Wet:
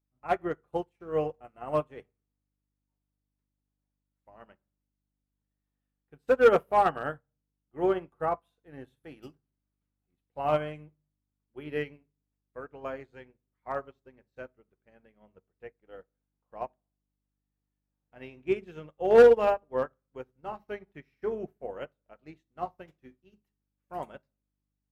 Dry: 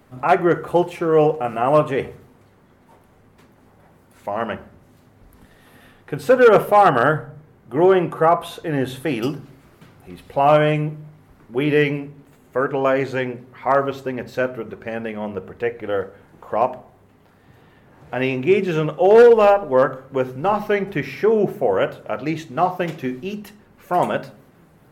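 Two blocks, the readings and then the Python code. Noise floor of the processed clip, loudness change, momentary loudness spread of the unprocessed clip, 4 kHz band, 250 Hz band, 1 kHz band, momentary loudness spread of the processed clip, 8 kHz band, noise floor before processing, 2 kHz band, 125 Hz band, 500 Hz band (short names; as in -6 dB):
-85 dBFS, -9.0 dB, 15 LU, -15.0 dB, -16.0 dB, -13.0 dB, 24 LU, n/a, -53 dBFS, -14.0 dB, -18.5 dB, -10.5 dB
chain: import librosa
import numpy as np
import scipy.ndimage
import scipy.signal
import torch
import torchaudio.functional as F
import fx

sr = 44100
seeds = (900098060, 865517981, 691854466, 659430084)

y = fx.dmg_buzz(x, sr, base_hz=50.0, harmonics=6, level_db=-38.0, tilt_db=-5, odd_only=False)
y = fx.upward_expand(y, sr, threshold_db=-35.0, expansion=2.5)
y = F.gain(torch.from_numpy(y), -5.0).numpy()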